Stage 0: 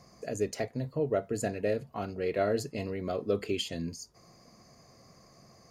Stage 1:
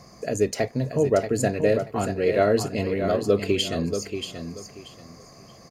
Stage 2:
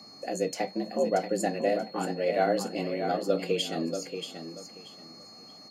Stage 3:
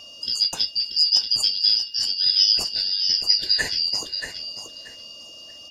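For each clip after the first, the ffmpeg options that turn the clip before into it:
ffmpeg -i in.wav -af "aecho=1:1:632|1264|1896:0.398|0.0916|0.0211,volume=8.5dB" out.wav
ffmpeg -i in.wav -af "flanger=delay=7.9:depth=6.4:regen=-52:speed=0.86:shape=sinusoidal,afreqshift=79,aeval=exprs='val(0)+0.00447*sin(2*PI*4300*n/s)':channel_layout=same,volume=-1.5dB" out.wav
ffmpeg -i in.wav -af "afftfilt=real='real(if(lt(b,272),68*(eq(floor(b/68),0)*3+eq(floor(b/68),1)*2+eq(floor(b/68),2)*1+eq(floor(b/68),3)*0)+mod(b,68),b),0)':imag='imag(if(lt(b,272),68*(eq(floor(b/68),0)*3+eq(floor(b/68),1)*2+eq(floor(b/68),2)*1+eq(floor(b/68),3)*0)+mod(b,68),b),0)':win_size=2048:overlap=0.75,volume=7dB" out.wav

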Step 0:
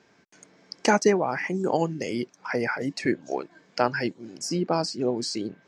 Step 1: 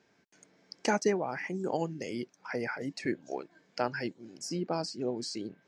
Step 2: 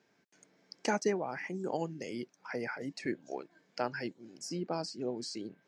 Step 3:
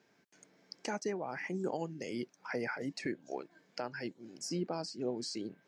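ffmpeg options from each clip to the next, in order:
ffmpeg -i in.wav -af "equalizer=frequency=1100:width=3.2:gain=-3,volume=-7.5dB" out.wav
ffmpeg -i in.wav -af "highpass=100,volume=-3dB" out.wav
ffmpeg -i in.wav -af "alimiter=level_in=2.5dB:limit=-24dB:level=0:latency=1:release=483,volume=-2.5dB,volume=1.5dB" out.wav

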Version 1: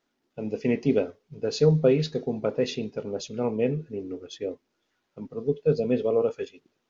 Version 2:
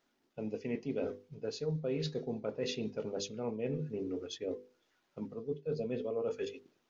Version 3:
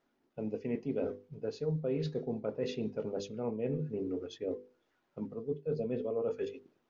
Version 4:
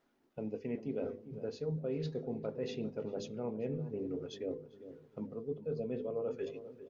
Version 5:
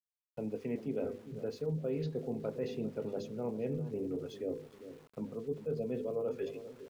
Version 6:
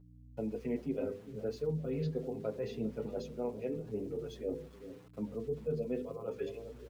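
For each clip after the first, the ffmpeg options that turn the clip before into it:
ffmpeg -i in.wav -af "bandreject=frequency=50:width_type=h:width=6,bandreject=frequency=100:width_type=h:width=6,bandreject=frequency=150:width_type=h:width=6,bandreject=frequency=200:width_type=h:width=6,bandreject=frequency=250:width_type=h:width=6,bandreject=frequency=300:width_type=h:width=6,bandreject=frequency=350:width_type=h:width=6,bandreject=frequency=400:width_type=h:width=6,bandreject=frequency=450:width_type=h:width=6,bandreject=frequency=500:width_type=h:width=6,areverse,acompressor=threshold=-34dB:ratio=5,areverse" out.wav
ffmpeg -i in.wav -af "highshelf=frequency=2500:gain=-12,volume=2dB" out.wav
ffmpeg -i in.wav -filter_complex "[0:a]asplit=2[link_01][link_02];[link_02]acompressor=threshold=-43dB:ratio=6,volume=2.5dB[link_03];[link_01][link_03]amix=inputs=2:normalize=0,asplit=2[link_04][link_05];[link_05]adelay=399,lowpass=frequency=930:poles=1,volume=-12dB,asplit=2[link_06][link_07];[link_07]adelay=399,lowpass=frequency=930:poles=1,volume=0.49,asplit=2[link_08][link_09];[link_09]adelay=399,lowpass=frequency=930:poles=1,volume=0.49,asplit=2[link_10][link_11];[link_11]adelay=399,lowpass=frequency=930:poles=1,volume=0.49,asplit=2[link_12][link_13];[link_13]adelay=399,lowpass=frequency=930:poles=1,volume=0.49[link_14];[link_04][link_06][link_08][link_10][link_12][link_14]amix=inputs=6:normalize=0,volume=-6dB" out.wav
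ffmpeg -i in.wav -filter_complex "[0:a]acrossover=split=140|1300[link_01][link_02][link_03];[link_03]alimiter=level_in=21dB:limit=-24dB:level=0:latency=1:release=382,volume=-21dB[link_04];[link_01][link_02][link_04]amix=inputs=3:normalize=0,aeval=exprs='val(0)*gte(abs(val(0)),0.00126)':channel_layout=same,volume=1.5dB" out.wav
ffmpeg -i in.wav -filter_complex "[0:a]aeval=exprs='val(0)+0.002*(sin(2*PI*60*n/s)+sin(2*PI*2*60*n/s)/2+sin(2*PI*3*60*n/s)/3+sin(2*PI*4*60*n/s)/4+sin(2*PI*5*60*n/s)/5)':channel_layout=same,asplit=2[link_01][link_02];[link_02]adelay=7.3,afreqshift=0.79[link_03];[link_01][link_03]amix=inputs=2:normalize=1,volume=2.5dB" out.wav

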